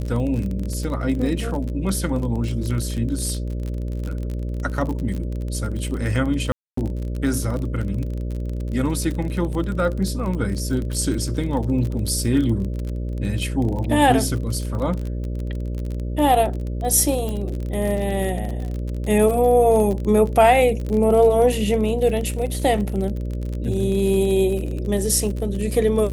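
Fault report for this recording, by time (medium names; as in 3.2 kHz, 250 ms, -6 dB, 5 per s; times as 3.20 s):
buzz 60 Hz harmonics 10 -26 dBFS
crackle 35 per s -26 dBFS
6.52–6.77 s: dropout 254 ms
17.29 s: pop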